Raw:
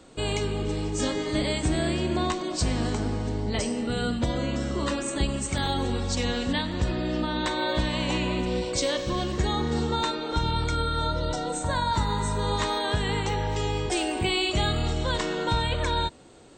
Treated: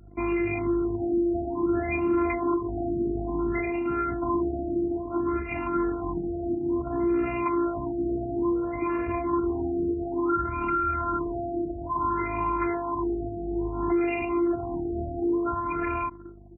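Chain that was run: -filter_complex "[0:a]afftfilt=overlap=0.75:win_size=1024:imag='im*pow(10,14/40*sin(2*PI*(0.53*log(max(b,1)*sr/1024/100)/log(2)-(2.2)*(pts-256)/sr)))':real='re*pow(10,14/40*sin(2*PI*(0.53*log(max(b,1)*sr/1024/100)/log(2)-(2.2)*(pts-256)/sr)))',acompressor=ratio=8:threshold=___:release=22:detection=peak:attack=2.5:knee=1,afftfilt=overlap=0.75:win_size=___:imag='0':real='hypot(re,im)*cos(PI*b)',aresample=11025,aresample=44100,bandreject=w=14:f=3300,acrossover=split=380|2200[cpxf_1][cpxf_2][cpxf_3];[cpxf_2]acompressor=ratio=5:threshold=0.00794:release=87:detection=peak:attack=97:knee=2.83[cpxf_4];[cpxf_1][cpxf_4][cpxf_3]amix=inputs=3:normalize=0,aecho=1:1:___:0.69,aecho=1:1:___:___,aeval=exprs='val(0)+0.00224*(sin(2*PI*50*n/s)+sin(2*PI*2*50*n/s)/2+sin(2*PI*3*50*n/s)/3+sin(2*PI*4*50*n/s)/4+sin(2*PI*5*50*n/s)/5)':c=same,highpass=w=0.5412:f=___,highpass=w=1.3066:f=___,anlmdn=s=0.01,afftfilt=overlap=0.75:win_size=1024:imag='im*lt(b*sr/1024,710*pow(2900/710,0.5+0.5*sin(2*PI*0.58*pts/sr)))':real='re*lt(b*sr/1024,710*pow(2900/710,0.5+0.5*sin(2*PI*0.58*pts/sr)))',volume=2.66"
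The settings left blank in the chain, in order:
0.0447, 512, 0.9, 79, 0.0944, 51, 51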